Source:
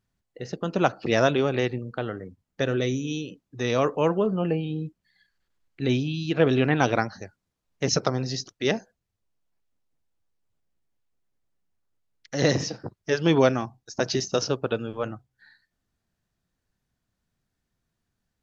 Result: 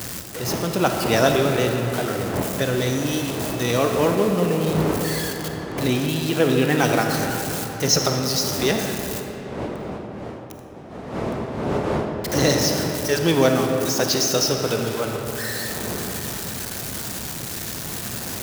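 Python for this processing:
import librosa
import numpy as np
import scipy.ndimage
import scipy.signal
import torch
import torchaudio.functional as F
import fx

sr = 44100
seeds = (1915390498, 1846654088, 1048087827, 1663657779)

y = x + 0.5 * 10.0 ** (-27.5 / 20.0) * np.sign(x)
y = fx.dmg_wind(y, sr, seeds[0], corner_hz=510.0, level_db=-33.0)
y = scipy.signal.sosfilt(scipy.signal.butter(2, 73.0, 'highpass', fs=sr, output='sos'), y)
y = fx.high_shelf(y, sr, hz=5400.0, db=11.0)
y = fx.rev_freeverb(y, sr, rt60_s=4.2, hf_ratio=0.55, predelay_ms=5, drr_db=3.0)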